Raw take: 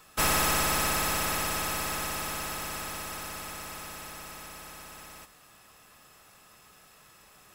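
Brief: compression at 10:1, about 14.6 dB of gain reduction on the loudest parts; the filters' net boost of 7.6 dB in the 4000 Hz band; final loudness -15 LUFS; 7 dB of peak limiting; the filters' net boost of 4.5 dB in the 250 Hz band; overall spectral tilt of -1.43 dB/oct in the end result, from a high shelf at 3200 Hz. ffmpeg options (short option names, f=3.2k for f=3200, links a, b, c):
-af "equalizer=f=250:t=o:g=6,highshelf=f=3.2k:g=5.5,equalizer=f=4k:t=o:g=5.5,acompressor=threshold=-33dB:ratio=10,volume=22dB,alimiter=limit=-6dB:level=0:latency=1"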